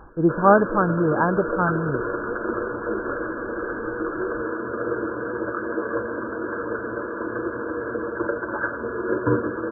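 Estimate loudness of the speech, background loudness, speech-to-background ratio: -21.0 LUFS, -27.5 LUFS, 6.5 dB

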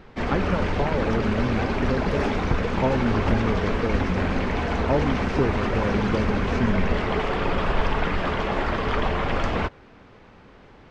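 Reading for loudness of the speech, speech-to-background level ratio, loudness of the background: -28.0 LUFS, -2.5 dB, -25.5 LUFS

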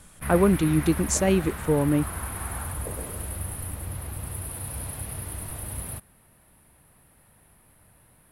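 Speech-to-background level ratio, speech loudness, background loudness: 10.0 dB, -23.5 LUFS, -33.5 LUFS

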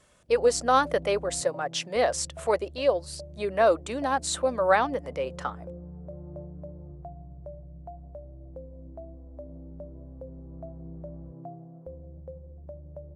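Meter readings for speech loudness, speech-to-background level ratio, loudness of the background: -26.0 LUFS, 18.0 dB, -44.0 LUFS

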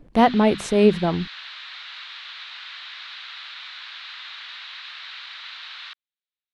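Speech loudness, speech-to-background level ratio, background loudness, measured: -19.0 LUFS, 17.0 dB, -36.0 LUFS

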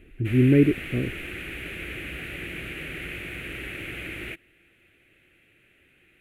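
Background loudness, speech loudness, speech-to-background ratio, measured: -34.5 LUFS, -21.5 LUFS, 13.0 dB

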